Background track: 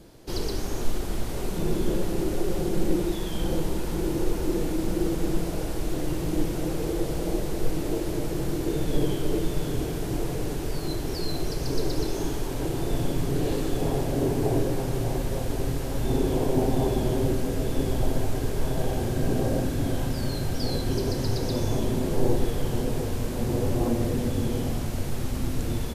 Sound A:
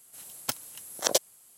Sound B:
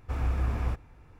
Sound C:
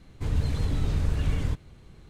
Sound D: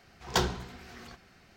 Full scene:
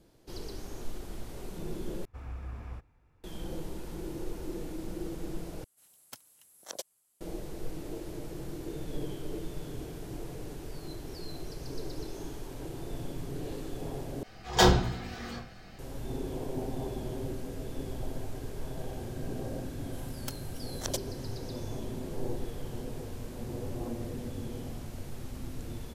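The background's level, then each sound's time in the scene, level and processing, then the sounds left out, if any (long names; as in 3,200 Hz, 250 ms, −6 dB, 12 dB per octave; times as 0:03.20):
background track −12 dB
0:02.05: overwrite with B −12.5 dB
0:05.64: overwrite with A −16 dB
0:14.23: overwrite with D −2.5 dB + rectangular room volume 130 cubic metres, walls furnished, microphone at 3.9 metres
0:19.79: mix in A −10.5 dB
not used: C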